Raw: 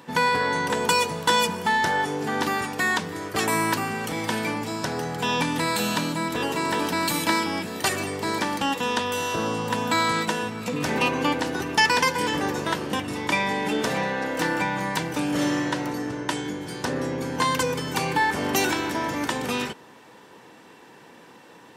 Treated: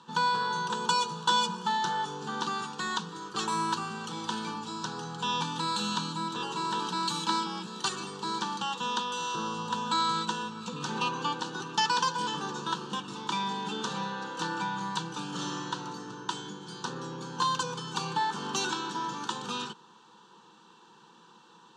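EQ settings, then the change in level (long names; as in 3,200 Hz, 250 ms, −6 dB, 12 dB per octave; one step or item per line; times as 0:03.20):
loudspeaker in its box 260–6,000 Hz, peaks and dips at 410 Hz −6 dB, 730 Hz −8 dB, 1,100 Hz −3 dB, 1,700 Hz −4 dB, 2,400 Hz −6 dB, 5,200 Hz −9 dB
parametric band 510 Hz −11 dB 1.3 octaves
phaser with its sweep stopped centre 410 Hz, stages 8
+3.5 dB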